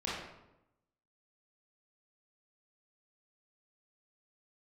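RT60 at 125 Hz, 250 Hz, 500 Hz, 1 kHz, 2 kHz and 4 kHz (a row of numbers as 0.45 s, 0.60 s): 1.1 s, 1.0 s, 0.95 s, 0.85 s, 0.70 s, 0.60 s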